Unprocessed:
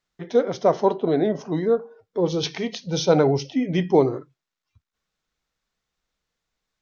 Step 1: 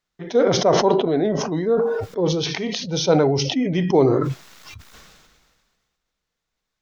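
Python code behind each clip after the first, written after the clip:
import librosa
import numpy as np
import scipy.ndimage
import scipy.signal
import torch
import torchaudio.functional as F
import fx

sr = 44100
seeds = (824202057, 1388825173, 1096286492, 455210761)

y = fx.sustainer(x, sr, db_per_s=33.0)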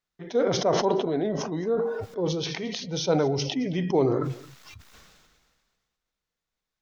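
y = x + 10.0 ** (-19.5 / 20.0) * np.pad(x, (int(219 * sr / 1000.0), 0))[:len(x)]
y = F.gain(torch.from_numpy(y), -6.5).numpy()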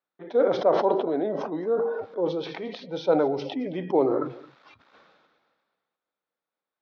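y = fx.cabinet(x, sr, low_hz=260.0, low_slope=12, high_hz=3500.0, hz=(300.0, 550.0, 840.0, 1300.0, 2000.0, 2900.0), db=(4, 6, 4, 3, -4, -7))
y = F.gain(torch.from_numpy(y), -1.0).numpy()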